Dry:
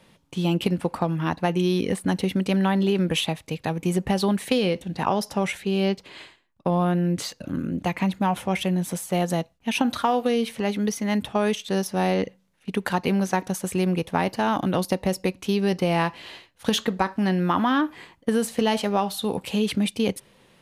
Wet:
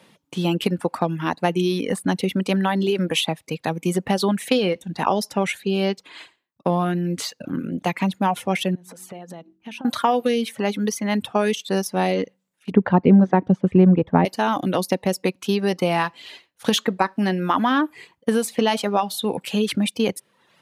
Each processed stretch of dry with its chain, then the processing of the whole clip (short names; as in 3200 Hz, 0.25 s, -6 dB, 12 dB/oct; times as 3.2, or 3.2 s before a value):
8.75–9.85 high shelf 4200 Hz -9.5 dB + de-hum 46.16 Hz, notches 9 + compressor 16:1, threshold -34 dBFS
12.71–14.25 LPF 2500 Hz + tilt -4 dB/oct
whole clip: reverb removal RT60 0.74 s; HPF 160 Hz 12 dB/oct; gain +3.5 dB